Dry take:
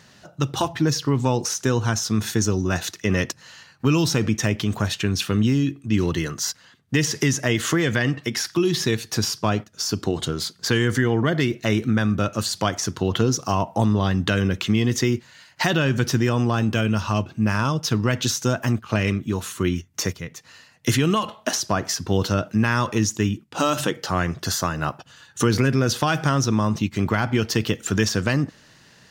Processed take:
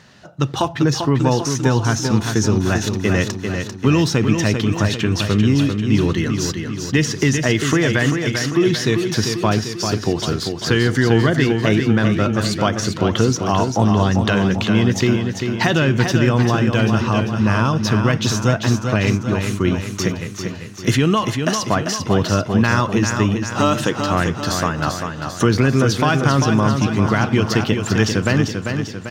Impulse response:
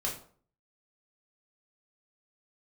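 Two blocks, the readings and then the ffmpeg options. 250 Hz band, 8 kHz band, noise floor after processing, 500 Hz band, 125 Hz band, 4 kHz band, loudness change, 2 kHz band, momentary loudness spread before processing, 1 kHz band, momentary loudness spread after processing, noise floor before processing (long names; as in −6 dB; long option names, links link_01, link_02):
+5.0 dB, +0.5 dB, −30 dBFS, +5.5 dB, +5.0 dB, +3.0 dB, +4.5 dB, +4.5 dB, 5 LU, +5.0 dB, 5 LU, −53 dBFS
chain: -af "highshelf=frequency=7100:gain=-10.5,aecho=1:1:394|788|1182|1576|1970|2364|2758:0.501|0.271|0.146|0.0789|0.0426|0.023|0.0124,volume=4dB"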